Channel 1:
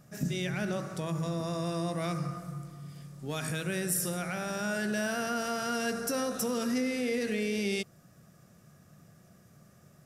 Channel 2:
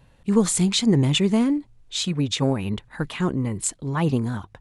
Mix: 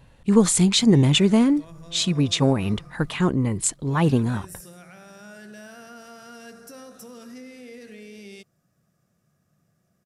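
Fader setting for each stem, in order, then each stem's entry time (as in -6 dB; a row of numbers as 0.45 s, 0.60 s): -11.5 dB, +2.5 dB; 0.60 s, 0.00 s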